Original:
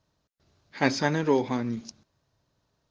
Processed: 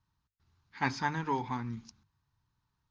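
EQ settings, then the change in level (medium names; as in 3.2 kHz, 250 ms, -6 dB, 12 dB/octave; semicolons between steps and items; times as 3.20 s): hum notches 50/100/150 Hz; dynamic bell 750 Hz, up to +5 dB, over -36 dBFS, Q 1; FFT filter 100 Hz 0 dB, 410 Hz -15 dB, 600 Hz -24 dB, 890 Hz -3 dB, 5.8 kHz -10 dB; -1.0 dB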